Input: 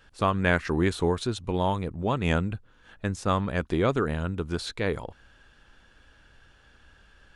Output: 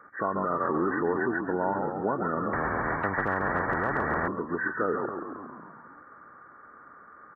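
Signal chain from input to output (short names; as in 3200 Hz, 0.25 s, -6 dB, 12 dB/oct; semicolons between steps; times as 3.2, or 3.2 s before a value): nonlinear frequency compression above 1100 Hz 4:1; on a send: frequency-shifting echo 0.136 s, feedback 62%, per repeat -48 Hz, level -7 dB; on the sum: limiter -17.5 dBFS, peak gain reduction 9.5 dB; in parallel at +1.5 dB: compressor, threshold -41 dBFS, peak gain reduction 17.5 dB; on the sum: Chebyshev high-pass 280 Hz, order 2; 2.53–4.28 spectral compressor 10:1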